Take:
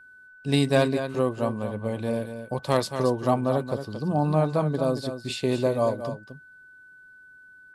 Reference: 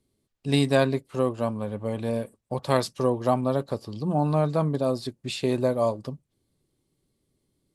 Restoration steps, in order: clip repair -9.5 dBFS; notch 1500 Hz, Q 30; inverse comb 0.227 s -9.5 dB

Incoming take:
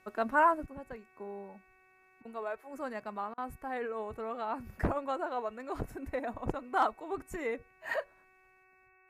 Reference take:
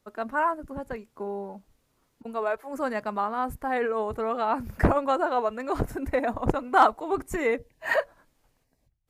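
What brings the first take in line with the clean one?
de-hum 374.3 Hz, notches 7; interpolate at 3.34, 37 ms; gain correction +10 dB, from 0.66

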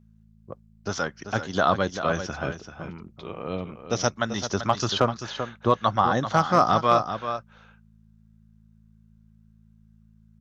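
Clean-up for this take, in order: clip repair -7.5 dBFS; de-hum 54.4 Hz, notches 4; inverse comb 0.388 s -9.5 dB

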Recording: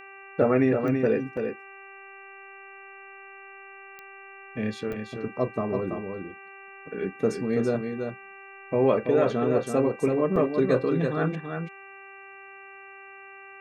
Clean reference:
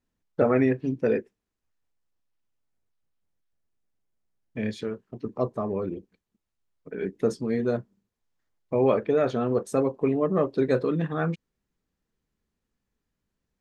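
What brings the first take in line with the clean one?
de-click; de-hum 391.5 Hz, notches 7; interpolate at 1.37/4.93/10.36, 3.1 ms; inverse comb 0.332 s -6 dB

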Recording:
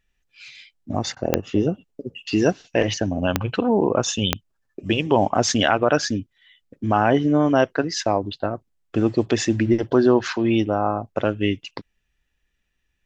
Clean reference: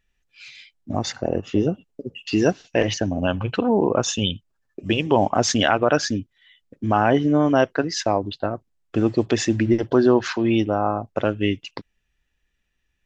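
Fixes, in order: de-click; interpolate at 1.15, 15 ms

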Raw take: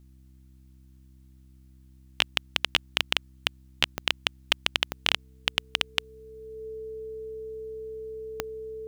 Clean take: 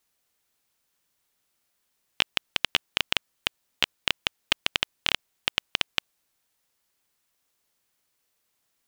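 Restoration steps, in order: de-click; de-hum 65 Hz, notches 5; notch 440 Hz, Q 30

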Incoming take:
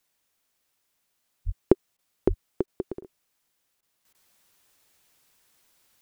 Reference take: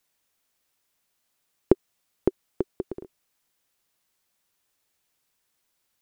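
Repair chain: 1.45–1.57 HPF 140 Hz 24 dB/oct; 2.27–2.39 HPF 140 Hz 24 dB/oct; interpolate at 1.97/2.66/3.01/3.81/4.13, 16 ms; gain 0 dB, from 4.05 s -9.5 dB

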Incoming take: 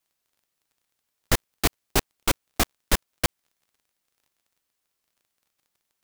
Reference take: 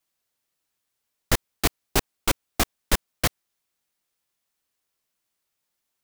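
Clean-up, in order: de-click; interpolate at 3.26, 24 ms

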